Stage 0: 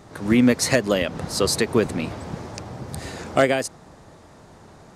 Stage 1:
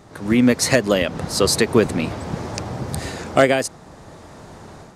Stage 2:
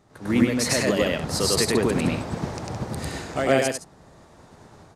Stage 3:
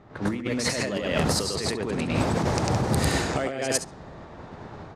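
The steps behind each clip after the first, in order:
level rider gain up to 7.5 dB
peak limiter -12 dBFS, peak gain reduction 10 dB; loudspeakers at several distances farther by 34 m 0 dB, 57 m -8 dB; upward expansion 1.5:1, over -39 dBFS
compressor with a negative ratio -29 dBFS, ratio -1; flutter echo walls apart 11.9 m, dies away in 0.22 s; level-controlled noise filter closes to 2.5 kHz, open at -22.5 dBFS; trim +3 dB

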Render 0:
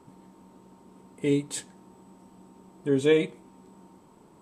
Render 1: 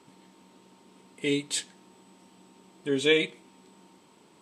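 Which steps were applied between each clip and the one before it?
frequency weighting D; trim -2.5 dB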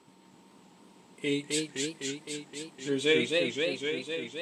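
modulated delay 257 ms, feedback 75%, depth 172 cents, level -3 dB; trim -3 dB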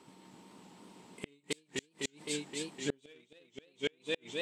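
Chebyshev shaper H 5 -33 dB, 7 -25 dB, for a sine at -11 dBFS; inverted gate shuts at -23 dBFS, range -37 dB; trim +4 dB

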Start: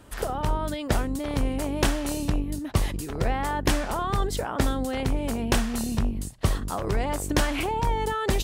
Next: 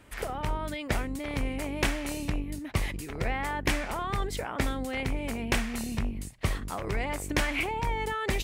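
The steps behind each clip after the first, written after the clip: peaking EQ 2.2 kHz +10.5 dB 0.61 oct; trim -5.5 dB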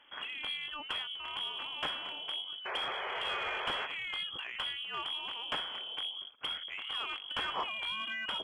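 frequency inversion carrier 3.3 kHz; painted sound noise, 2.65–3.87 s, 360–2600 Hz -34 dBFS; overdrive pedal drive 15 dB, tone 1 kHz, clips at -9.5 dBFS; trim -8 dB

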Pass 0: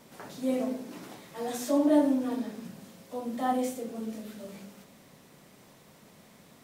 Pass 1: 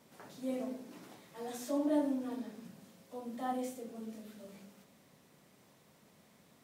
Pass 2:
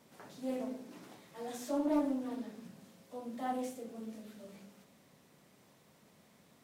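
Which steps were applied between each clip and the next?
high-pass 44 Hz; trim -8.5 dB
loudspeaker Doppler distortion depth 0.25 ms

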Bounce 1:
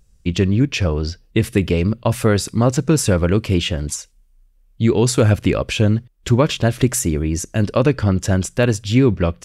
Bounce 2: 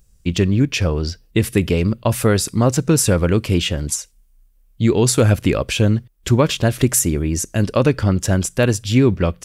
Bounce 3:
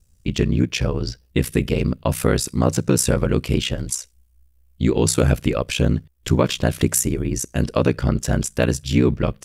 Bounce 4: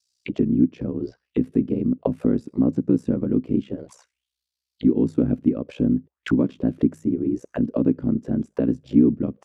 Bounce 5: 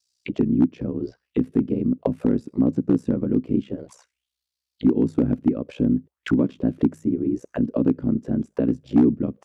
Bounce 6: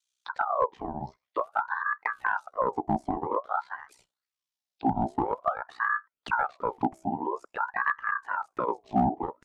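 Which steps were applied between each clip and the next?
treble shelf 9.8 kHz +11 dB
ring modulator 31 Hz
auto-wah 260–4800 Hz, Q 4, down, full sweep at -17.5 dBFS; trim +6.5 dB
hard clipper -9 dBFS, distortion -24 dB
ring modulator with a swept carrier 970 Hz, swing 50%, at 0.5 Hz; trim -5 dB

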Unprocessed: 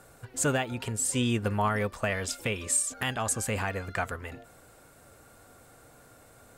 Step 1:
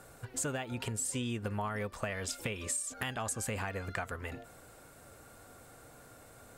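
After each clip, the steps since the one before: compression 6:1, threshold -33 dBFS, peak gain reduction 10.5 dB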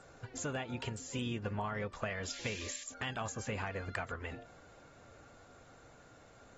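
painted sound noise, 2.33–2.84 s, 1.6–9.2 kHz -45 dBFS; trim -2.5 dB; AAC 24 kbps 48 kHz

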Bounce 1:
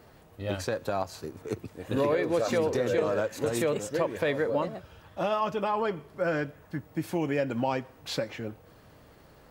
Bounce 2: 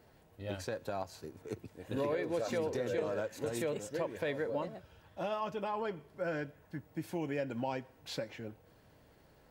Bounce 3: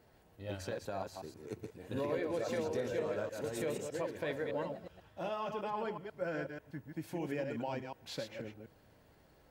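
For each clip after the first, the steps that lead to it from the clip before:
band-stop 1.2 kHz, Q 8.1; trim -8 dB
chunks repeated in reverse 122 ms, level -5 dB; trim -2.5 dB

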